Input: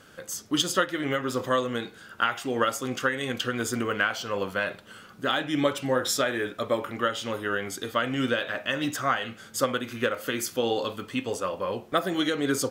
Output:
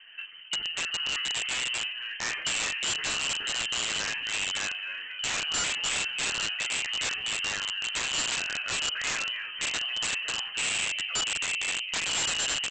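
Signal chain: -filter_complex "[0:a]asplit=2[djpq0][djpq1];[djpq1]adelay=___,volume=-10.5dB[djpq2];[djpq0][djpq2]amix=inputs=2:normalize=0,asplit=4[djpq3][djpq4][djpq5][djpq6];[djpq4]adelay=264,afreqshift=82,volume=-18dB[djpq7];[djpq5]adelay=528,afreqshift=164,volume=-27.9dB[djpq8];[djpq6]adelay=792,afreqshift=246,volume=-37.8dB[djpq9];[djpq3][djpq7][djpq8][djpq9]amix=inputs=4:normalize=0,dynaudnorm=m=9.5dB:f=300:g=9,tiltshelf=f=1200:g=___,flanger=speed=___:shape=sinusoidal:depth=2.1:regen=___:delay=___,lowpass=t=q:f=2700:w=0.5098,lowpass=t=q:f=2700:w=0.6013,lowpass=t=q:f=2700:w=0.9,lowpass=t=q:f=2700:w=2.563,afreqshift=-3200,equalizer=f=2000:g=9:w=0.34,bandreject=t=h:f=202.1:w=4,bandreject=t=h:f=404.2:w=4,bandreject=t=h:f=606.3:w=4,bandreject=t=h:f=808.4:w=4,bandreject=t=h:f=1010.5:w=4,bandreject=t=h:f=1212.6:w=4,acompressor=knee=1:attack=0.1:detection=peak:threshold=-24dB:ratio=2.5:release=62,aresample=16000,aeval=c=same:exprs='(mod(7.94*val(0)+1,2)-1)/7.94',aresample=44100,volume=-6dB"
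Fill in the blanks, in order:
43, 6.5, 0.49, 1, 9.8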